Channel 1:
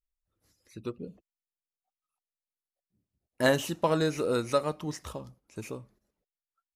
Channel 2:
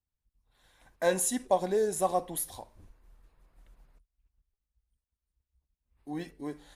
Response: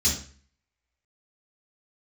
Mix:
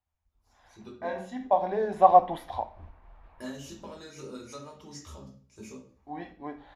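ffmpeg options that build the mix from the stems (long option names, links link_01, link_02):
-filter_complex "[0:a]highpass=frequency=220:poles=1,highshelf=frequency=9900:gain=-4,acompressor=threshold=-32dB:ratio=6,volume=-10dB,asplit=3[link_01][link_02][link_03];[link_02]volume=-8.5dB[link_04];[1:a]firequalizer=gain_entry='entry(450,0);entry(690,13);entry(1500,5);entry(2200,5);entry(7400,-27)':delay=0.05:min_phase=1,dynaudnorm=framelen=290:gausssize=11:maxgain=14dB,volume=0dB,asplit=2[link_05][link_06];[link_06]volume=-24dB[link_07];[link_03]apad=whole_len=302440[link_08];[link_05][link_08]sidechaincompress=threshold=-56dB:ratio=8:attack=5.8:release=1220[link_09];[2:a]atrim=start_sample=2205[link_10];[link_04][link_07]amix=inputs=2:normalize=0[link_11];[link_11][link_10]afir=irnorm=-1:irlink=0[link_12];[link_01][link_09][link_12]amix=inputs=3:normalize=0"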